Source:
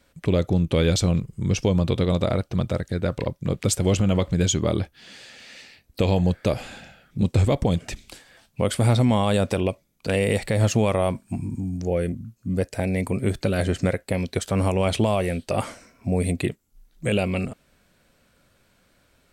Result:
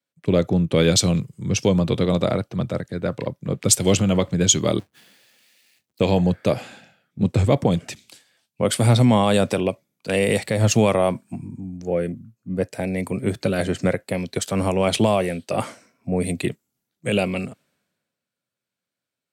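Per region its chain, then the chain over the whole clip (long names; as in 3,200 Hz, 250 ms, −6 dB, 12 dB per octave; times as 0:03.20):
0:04.79–0:06.00: each half-wave held at its own peak + downward compressor 16 to 1, threshold −45 dBFS
whole clip: high-pass filter 110 Hz 24 dB per octave; multiband upward and downward expander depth 70%; level +2.5 dB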